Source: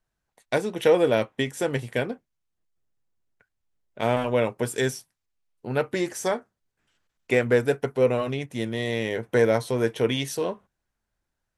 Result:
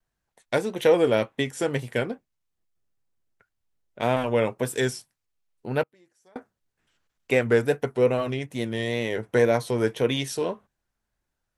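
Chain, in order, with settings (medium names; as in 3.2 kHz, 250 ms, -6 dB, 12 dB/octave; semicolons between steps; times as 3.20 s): wow and flutter 71 cents; 5.83–6.36 s: inverted gate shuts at -33 dBFS, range -33 dB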